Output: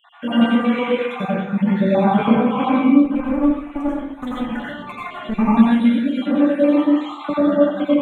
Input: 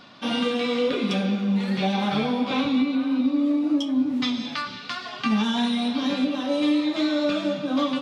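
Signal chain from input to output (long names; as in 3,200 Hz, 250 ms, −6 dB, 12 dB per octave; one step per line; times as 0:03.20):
time-frequency cells dropped at random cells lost 67%
high-shelf EQ 4,300 Hz −9 dB
0:03.03–0:05.39: asymmetric clip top −33.5 dBFS
Butterworth band-reject 5,000 Hz, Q 1
dense smooth reverb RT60 0.75 s, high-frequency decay 0.45×, pre-delay 75 ms, DRR −6 dB
level +4 dB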